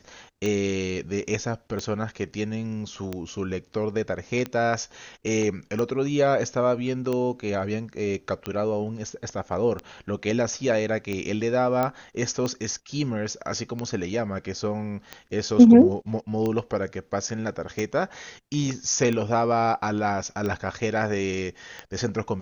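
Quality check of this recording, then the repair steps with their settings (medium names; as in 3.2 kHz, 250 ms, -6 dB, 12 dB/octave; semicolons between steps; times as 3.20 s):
tick 45 rpm -16 dBFS
11.83 s: pop -12 dBFS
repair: de-click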